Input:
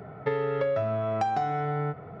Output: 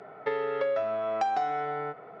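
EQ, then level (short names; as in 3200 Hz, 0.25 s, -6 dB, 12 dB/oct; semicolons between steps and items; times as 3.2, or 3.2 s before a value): HPF 390 Hz 12 dB/oct; air absorption 77 m; high shelf 4400 Hz +7 dB; 0.0 dB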